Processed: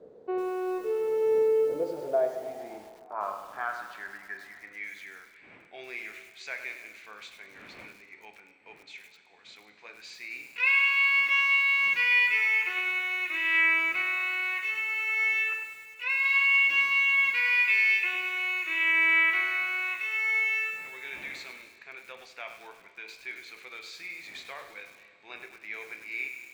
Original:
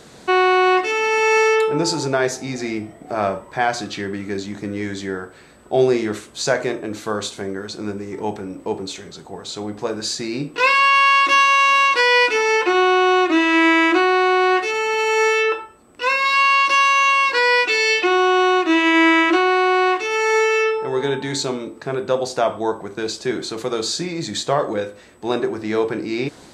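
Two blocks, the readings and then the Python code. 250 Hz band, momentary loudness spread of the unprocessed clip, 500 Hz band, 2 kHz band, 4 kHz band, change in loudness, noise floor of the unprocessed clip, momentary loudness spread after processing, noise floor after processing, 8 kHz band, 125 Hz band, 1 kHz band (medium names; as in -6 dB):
under -20 dB, 14 LU, -14.0 dB, -5.5 dB, -13.0 dB, -6.5 dB, -44 dBFS, 21 LU, -56 dBFS, under -20 dB, under -25 dB, -21.0 dB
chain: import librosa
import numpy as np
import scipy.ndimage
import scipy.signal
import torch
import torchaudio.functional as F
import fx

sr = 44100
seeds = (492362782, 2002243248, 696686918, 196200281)

y = fx.dmg_wind(x, sr, seeds[0], corner_hz=270.0, level_db=-29.0)
y = fx.filter_sweep_bandpass(y, sr, from_hz=470.0, to_hz=2300.0, start_s=1.6, end_s=4.91, q=7.5)
y = fx.rev_schroeder(y, sr, rt60_s=2.6, comb_ms=26, drr_db=11.0)
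y = fx.echo_crushed(y, sr, ms=101, feedback_pct=55, bits=8, wet_db=-8.5)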